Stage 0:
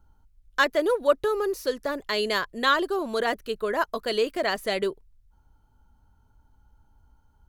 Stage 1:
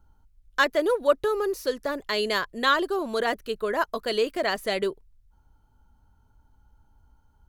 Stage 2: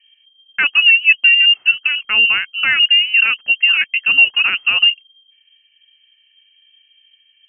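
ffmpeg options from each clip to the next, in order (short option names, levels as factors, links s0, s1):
-af anull
-filter_complex "[0:a]equalizer=f=410:w=0.99:g=13,asplit=2[s0][s1];[s1]alimiter=limit=0.335:level=0:latency=1:release=107,volume=1.12[s2];[s0][s2]amix=inputs=2:normalize=0,lowpass=f=2700:t=q:w=0.5098,lowpass=f=2700:t=q:w=0.6013,lowpass=f=2700:t=q:w=0.9,lowpass=f=2700:t=q:w=2.563,afreqshift=-3200,volume=0.708"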